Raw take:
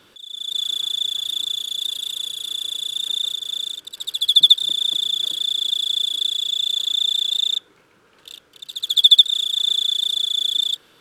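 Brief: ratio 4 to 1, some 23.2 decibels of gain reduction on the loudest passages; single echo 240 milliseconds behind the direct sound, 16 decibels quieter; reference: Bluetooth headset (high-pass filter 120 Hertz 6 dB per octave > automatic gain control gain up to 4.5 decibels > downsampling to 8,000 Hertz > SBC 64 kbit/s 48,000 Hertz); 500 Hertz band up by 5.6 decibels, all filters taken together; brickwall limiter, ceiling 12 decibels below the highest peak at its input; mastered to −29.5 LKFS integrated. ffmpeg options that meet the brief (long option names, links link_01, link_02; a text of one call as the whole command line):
ffmpeg -i in.wav -af "equalizer=frequency=500:width_type=o:gain=7,acompressor=threshold=-36dB:ratio=4,alimiter=level_in=11dB:limit=-24dB:level=0:latency=1,volume=-11dB,highpass=frequency=120:poles=1,aecho=1:1:240:0.158,dynaudnorm=maxgain=4.5dB,aresample=8000,aresample=44100,volume=11.5dB" -ar 48000 -c:a sbc -b:a 64k out.sbc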